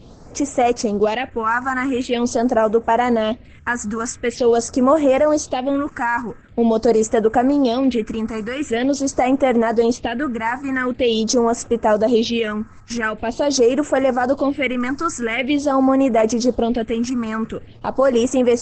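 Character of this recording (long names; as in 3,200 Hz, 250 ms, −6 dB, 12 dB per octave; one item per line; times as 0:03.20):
phaser sweep stages 4, 0.45 Hz, lowest notch 540–4,300 Hz
Opus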